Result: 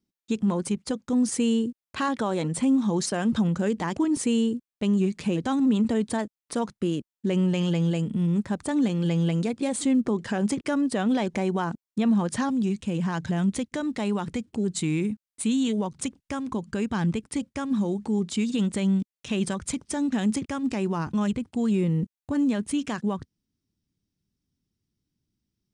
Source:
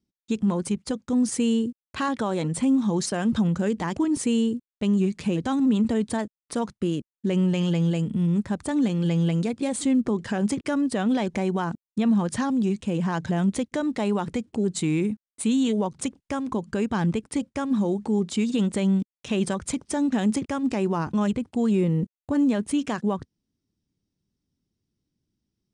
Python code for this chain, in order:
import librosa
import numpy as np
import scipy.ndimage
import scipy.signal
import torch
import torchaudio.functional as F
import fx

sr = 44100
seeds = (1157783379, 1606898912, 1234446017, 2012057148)

y = fx.peak_eq(x, sr, hz=fx.steps((0.0, 62.0), (12.49, 570.0)), db=-4.5, octaves=2.1)